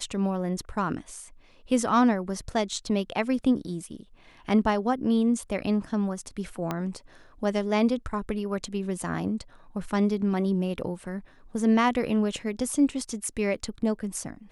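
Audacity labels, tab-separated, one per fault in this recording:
6.710000	6.710000	pop -15 dBFS

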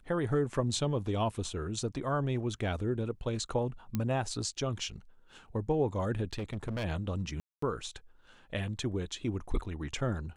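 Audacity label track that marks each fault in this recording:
3.950000	3.950000	pop -18 dBFS
6.330000	6.850000	clipped -31.5 dBFS
7.400000	7.620000	dropout 224 ms

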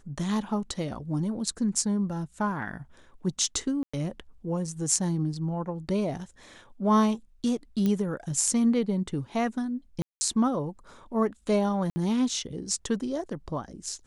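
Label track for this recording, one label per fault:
3.830000	3.940000	dropout 105 ms
7.860000	7.860000	pop -15 dBFS
10.020000	10.210000	dropout 190 ms
11.900000	11.960000	dropout 60 ms

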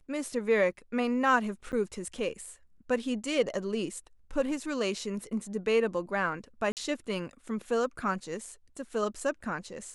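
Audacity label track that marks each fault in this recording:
1.720000	1.730000	dropout 9 ms
6.720000	6.770000	dropout 48 ms

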